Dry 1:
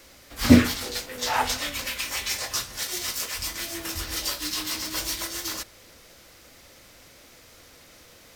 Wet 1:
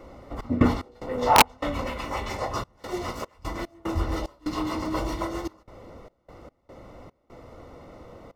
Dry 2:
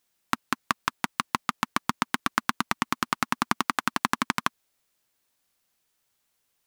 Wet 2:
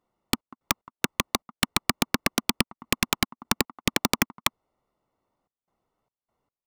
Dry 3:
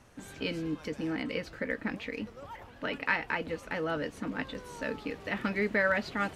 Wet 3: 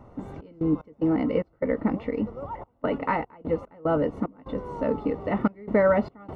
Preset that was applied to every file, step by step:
step gate "xx.x.xx.xxxxx." 74 bpm -24 dB; polynomial smoothing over 65 samples; wrapped overs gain 16.5 dB; match loudness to -27 LUFS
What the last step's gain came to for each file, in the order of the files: +10.5, +8.0, +11.0 dB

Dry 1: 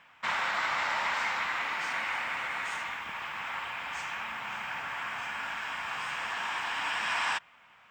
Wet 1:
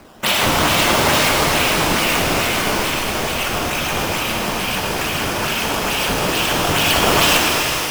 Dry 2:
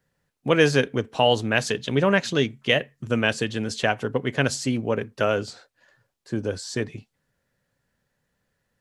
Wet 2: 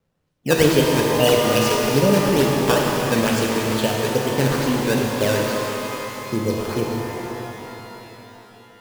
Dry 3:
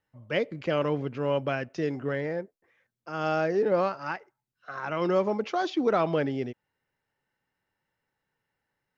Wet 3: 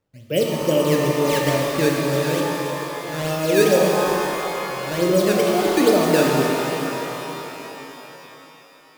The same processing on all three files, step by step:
band shelf 1300 Hz -15.5 dB; reverb removal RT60 0.6 s; decimation with a swept rate 12×, swing 160% 2.3 Hz; shimmer reverb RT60 3.8 s, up +12 st, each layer -8 dB, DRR -1.5 dB; normalise peaks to -3 dBFS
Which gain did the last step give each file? +22.0, +2.5, +8.0 dB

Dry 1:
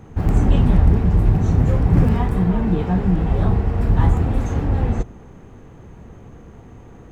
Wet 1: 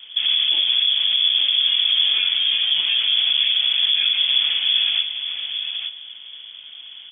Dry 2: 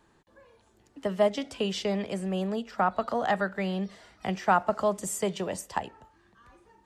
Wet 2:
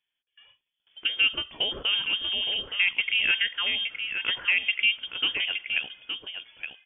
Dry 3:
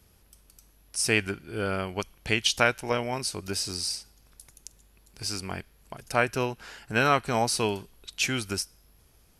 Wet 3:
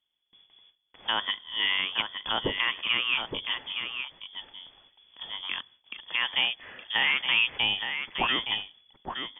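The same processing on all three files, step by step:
gate with hold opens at -48 dBFS; dynamic EQ 1000 Hz, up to +6 dB, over -38 dBFS, Q 0.87; limiter -14 dBFS; on a send: echo 0.868 s -7.5 dB; on the sum: inverted band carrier 3400 Hz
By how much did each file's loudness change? +2.0, +4.5, +0.5 LU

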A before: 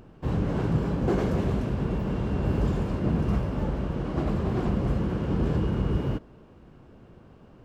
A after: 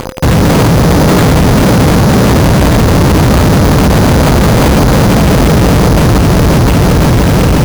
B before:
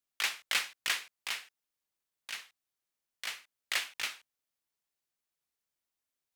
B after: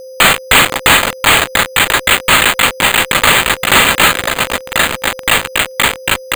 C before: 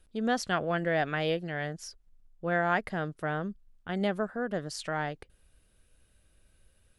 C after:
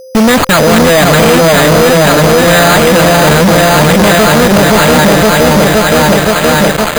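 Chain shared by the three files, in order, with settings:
LPF 6300 Hz 12 dB/oct; bell 4300 Hz +6.5 dB 0.21 oct; in parallel at 0 dB: compressor 16:1, threshold -35 dBFS; on the sum: notch comb 370 Hz; on a send: repeats that get brighter 0.52 s, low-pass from 750 Hz, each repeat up 1 oct, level 0 dB; on the sum: fuzz box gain 48 dB, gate -40 dBFS; whine 520 Hz -37 dBFS; careless resampling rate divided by 8×, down none, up hold; normalise peaks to -2 dBFS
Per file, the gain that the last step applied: +8.0, +9.0, +9.0 dB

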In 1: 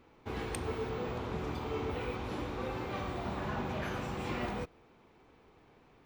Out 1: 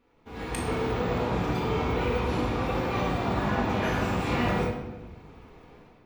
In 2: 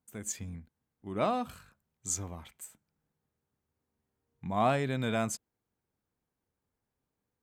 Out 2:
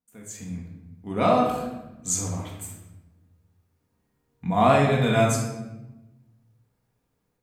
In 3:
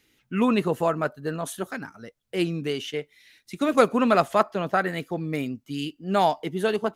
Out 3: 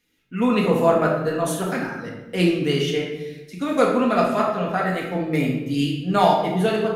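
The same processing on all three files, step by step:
AGC gain up to 13.5 dB; shoebox room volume 500 m³, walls mixed, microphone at 1.8 m; gain -8 dB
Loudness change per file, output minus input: +9.5, +10.0, +4.0 LU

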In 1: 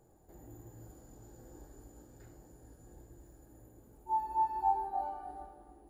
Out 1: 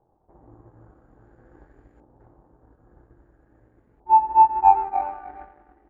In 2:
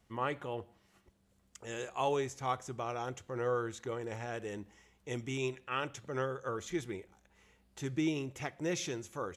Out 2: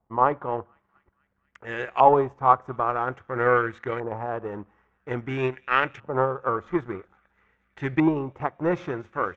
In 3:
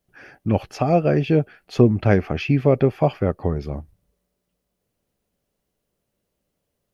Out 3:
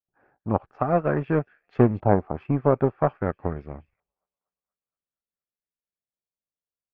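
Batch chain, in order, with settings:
thin delay 0.237 s, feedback 68%, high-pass 2300 Hz, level -17 dB; power-law curve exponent 1.4; LFO low-pass saw up 0.5 Hz 890–2100 Hz; normalise peaks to -3 dBFS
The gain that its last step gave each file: +12.5, +14.0, -1.5 dB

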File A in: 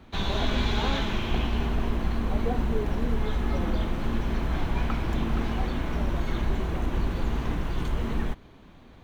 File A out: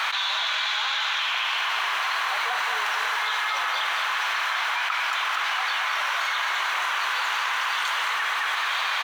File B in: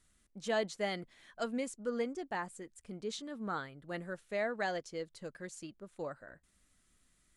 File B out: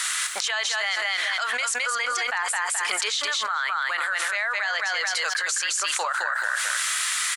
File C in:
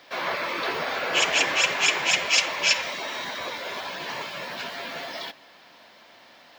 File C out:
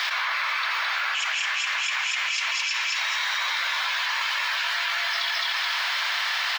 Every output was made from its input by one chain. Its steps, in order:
HPF 1100 Hz 24 dB/oct; high shelf 9200 Hz -9 dB; on a send: feedback echo 0.214 s, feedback 18%, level -6 dB; on the sum: fast leveller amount 100%; match loudness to -24 LUFS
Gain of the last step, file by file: +6.0, +10.5, -8.0 dB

